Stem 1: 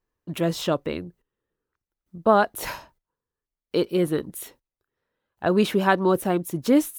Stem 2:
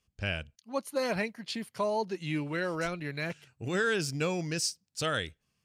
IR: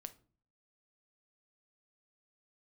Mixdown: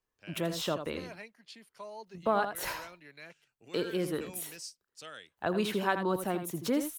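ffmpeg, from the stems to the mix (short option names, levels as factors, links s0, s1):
-filter_complex "[0:a]volume=0.75,asplit=2[s0][s1];[s1]volume=0.335[s2];[1:a]highpass=190,dynaudnorm=f=210:g=7:m=1.58,volume=0.15[s3];[s2]aecho=0:1:81:1[s4];[s0][s3][s4]amix=inputs=3:normalize=0,acrossover=split=160[s5][s6];[s6]acompressor=threshold=0.0251:ratio=1.5[s7];[s5][s7]amix=inputs=2:normalize=0,lowshelf=f=470:g=-6.5"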